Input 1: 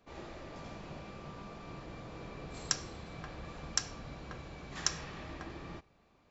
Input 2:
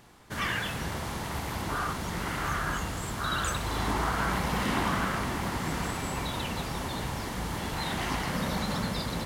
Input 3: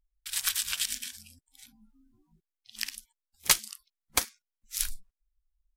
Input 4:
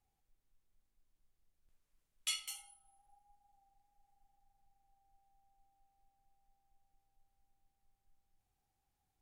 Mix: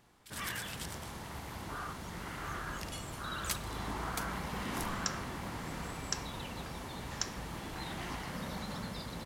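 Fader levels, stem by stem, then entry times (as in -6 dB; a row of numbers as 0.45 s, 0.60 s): -4.5 dB, -10.0 dB, -15.0 dB, -10.5 dB; 2.35 s, 0.00 s, 0.00 s, 0.65 s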